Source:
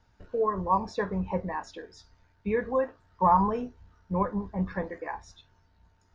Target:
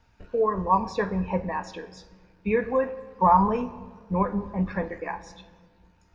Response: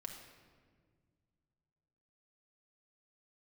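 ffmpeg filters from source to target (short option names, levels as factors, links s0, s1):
-filter_complex "[0:a]equalizer=f=2500:t=o:w=0.25:g=9,asplit=2[s0][s1];[1:a]atrim=start_sample=2205[s2];[s1][s2]afir=irnorm=-1:irlink=0,volume=0.708[s3];[s0][s3]amix=inputs=2:normalize=0"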